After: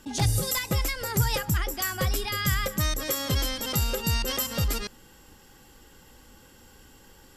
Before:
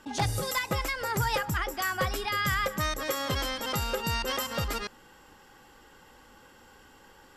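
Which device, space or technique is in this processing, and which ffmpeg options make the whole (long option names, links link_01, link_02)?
smiley-face EQ: -af "lowshelf=frequency=170:gain=6,equalizer=frequency=1100:width_type=o:width=2.2:gain=-7,highshelf=frequency=6100:gain=7,volume=2.5dB"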